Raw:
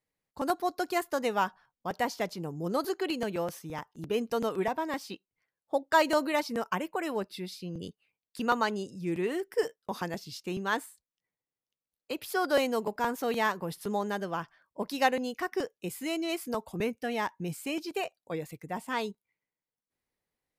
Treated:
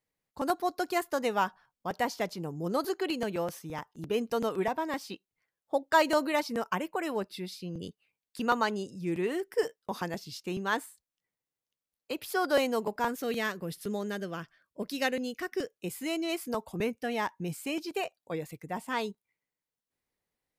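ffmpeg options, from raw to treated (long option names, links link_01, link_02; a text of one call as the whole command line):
ffmpeg -i in.wav -filter_complex "[0:a]asettb=1/sr,asplit=3[link_01][link_02][link_03];[link_01]atrim=end=13.084[link_04];[link_02]atrim=start=13.08:end=15.72,asetpts=PTS-STARTPTS,afade=type=in:duration=0.004:curve=qsin,afade=type=out:start_time=2.636:duration=0.004:curve=qsin,equalizer=frequency=900:width=2.1:gain=-13.5[link_05];[link_03]atrim=start=15.716[link_06];[link_04][link_05]acrossfade=duration=0.004:curve1=hsin:curve2=qsin[link_07];[link_07][link_06]acrossfade=duration=0.004:curve1=qsin:curve2=hsin" out.wav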